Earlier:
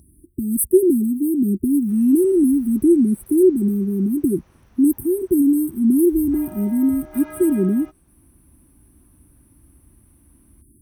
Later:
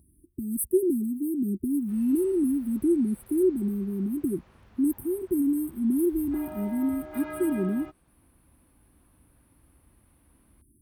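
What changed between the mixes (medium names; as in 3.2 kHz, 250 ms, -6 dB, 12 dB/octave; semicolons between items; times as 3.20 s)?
speech -9.0 dB; master: add peaking EQ 5.9 kHz -12.5 dB 0.22 oct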